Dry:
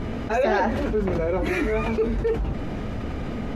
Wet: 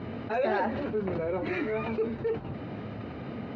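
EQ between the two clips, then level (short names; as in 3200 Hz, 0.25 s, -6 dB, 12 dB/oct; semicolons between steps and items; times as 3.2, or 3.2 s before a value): Chebyshev band-pass 100–4000 Hz, order 3; notch 3400 Hz, Q 9.9; -6.0 dB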